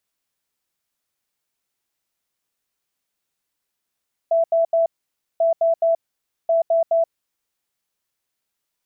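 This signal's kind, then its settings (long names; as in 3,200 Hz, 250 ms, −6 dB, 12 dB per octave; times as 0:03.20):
beeps in groups sine 663 Hz, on 0.13 s, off 0.08 s, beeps 3, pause 0.54 s, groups 3, −14 dBFS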